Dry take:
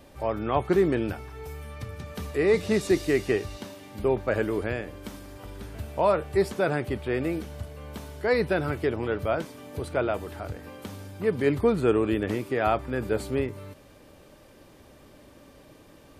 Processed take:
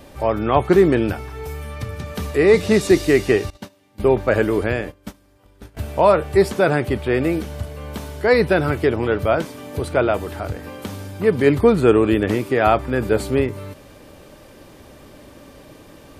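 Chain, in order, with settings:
0:03.50–0:05.77: noise gate −36 dBFS, range −21 dB
level +8.5 dB

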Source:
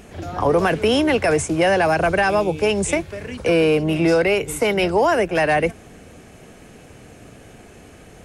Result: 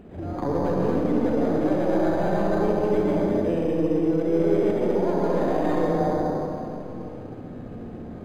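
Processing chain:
stylus tracing distortion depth 0.39 ms
parametric band 220 Hz +7.5 dB 1.8 octaves
dense smooth reverb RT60 2.8 s, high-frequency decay 0.3×, pre-delay 105 ms, DRR −5 dB
reversed playback
downward compressor 10 to 1, threshold −14 dBFS, peak gain reduction 14 dB
reversed playback
high-shelf EQ 2,200 Hz −11 dB
mains-hum notches 50/100/150/200 Hz
on a send: feedback echo with a low-pass in the loop 66 ms, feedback 64%, low-pass 2,000 Hz, level −4 dB
on the sum: linearly interpolated sample-rate reduction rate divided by 8×
level −6 dB

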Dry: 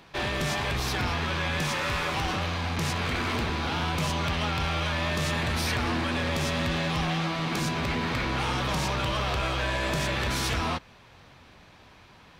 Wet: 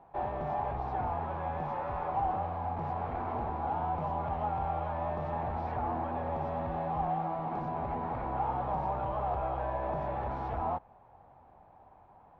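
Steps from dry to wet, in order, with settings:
low-pass with resonance 790 Hz, resonance Q 4.9
parametric band 250 Hz −4.5 dB 2.8 octaves
level −6.5 dB

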